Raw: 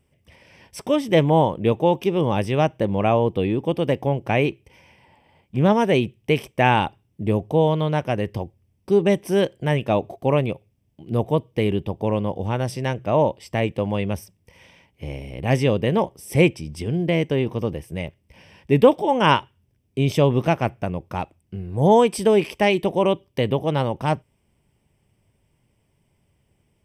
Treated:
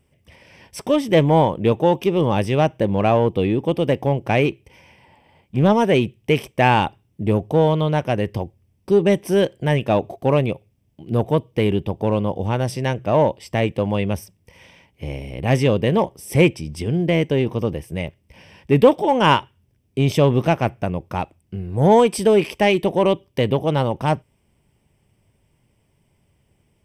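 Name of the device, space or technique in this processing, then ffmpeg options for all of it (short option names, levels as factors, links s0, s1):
parallel distortion: -filter_complex "[0:a]asplit=2[s0][s1];[s1]asoftclip=type=hard:threshold=0.15,volume=0.376[s2];[s0][s2]amix=inputs=2:normalize=0"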